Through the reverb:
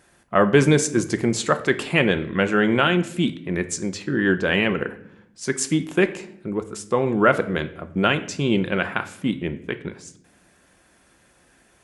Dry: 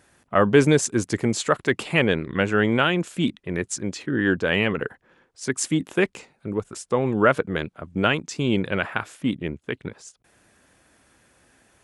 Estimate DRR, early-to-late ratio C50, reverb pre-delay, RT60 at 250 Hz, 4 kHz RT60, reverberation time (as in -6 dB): 9.0 dB, 14.5 dB, 3 ms, 1.2 s, 0.50 s, 0.70 s